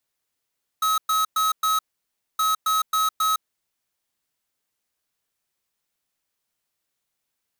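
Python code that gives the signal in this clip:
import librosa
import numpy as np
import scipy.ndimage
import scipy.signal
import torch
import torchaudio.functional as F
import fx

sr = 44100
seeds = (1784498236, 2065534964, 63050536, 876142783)

y = fx.beep_pattern(sr, wave='square', hz=1280.0, on_s=0.16, off_s=0.11, beeps=4, pause_s=0.6, groups=2, level_db=-21.0)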